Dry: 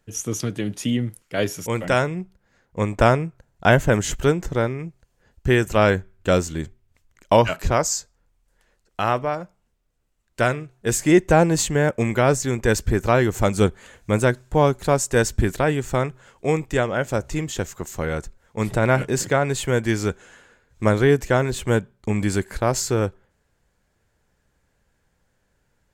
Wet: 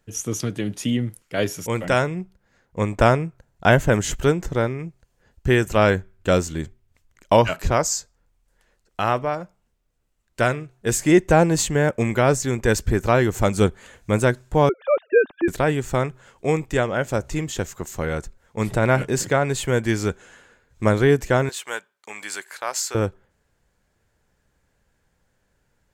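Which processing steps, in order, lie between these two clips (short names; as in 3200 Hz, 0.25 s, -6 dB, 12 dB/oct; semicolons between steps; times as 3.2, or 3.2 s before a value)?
14.69–15.48 sine-wave speech; 21.49–22.95 HPF 1000 Hz 12 dB/oct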